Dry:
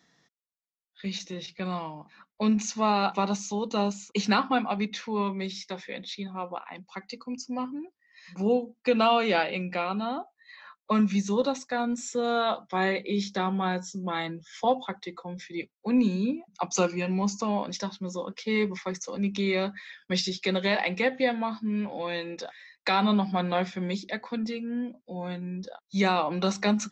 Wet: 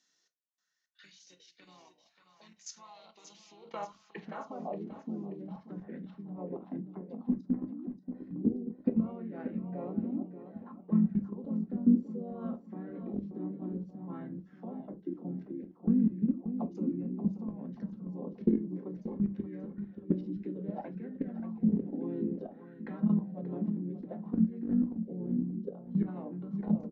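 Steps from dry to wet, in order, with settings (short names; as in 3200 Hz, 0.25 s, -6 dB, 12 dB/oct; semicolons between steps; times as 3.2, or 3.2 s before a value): tilt -2.5 dB/oct; compressor 3:1, threshold -36 dBFS, peak gain reduction 16 dB; harmoniser -4 st -3 dB, -3 st -15 dB; band-pass sweep 6600 Hz -> 240 Hz, 2.91–4.96; level quantiser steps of 17 dB; feedback echo 0.582 s, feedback 42%, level -10 dB; on a send at -7 dB: reverb, pre-delay 3 ms; on the sum: LFO bell 0.59 Hz 290–1800 Hz +10 dB; gain +8 dB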